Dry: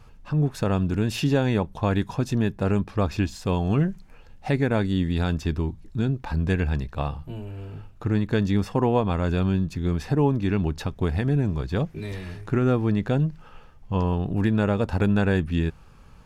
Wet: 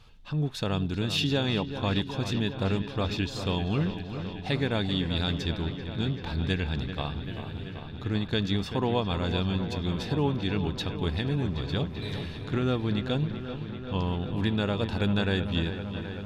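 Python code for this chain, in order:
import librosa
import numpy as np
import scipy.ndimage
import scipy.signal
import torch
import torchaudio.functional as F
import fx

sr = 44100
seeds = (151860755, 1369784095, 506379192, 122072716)

p1 = fx.peak_eq(x, sr, hz=3600.0, db=14.5, octaves=0.86)
p2 = p1 + fx.echo_wet_lowpass(p1, sr, ms=387, feedback_pct=79, hz=3400.0, wet_db=-10, dry=0)
y = p2 * librosa.db_to_amplitude(-6.0)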